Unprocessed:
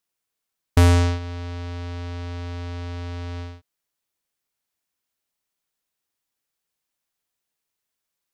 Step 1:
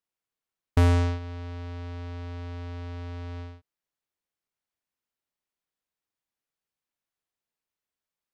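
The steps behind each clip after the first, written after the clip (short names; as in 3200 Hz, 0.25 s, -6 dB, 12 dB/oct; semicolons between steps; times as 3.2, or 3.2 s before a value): high shelf 3900 Hz -8.5 dB; gain -5 dB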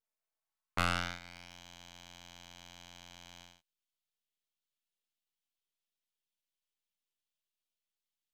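minimum comb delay 4.6 ms; high-pass sweep 560 Hz -> 3100 Hz, 0.19–1.61; half-wave rectifier; gain +1 dB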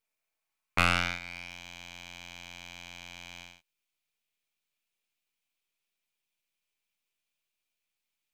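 bell 2400 Hz +10.5 dB 0.3 oct; gain +5 dB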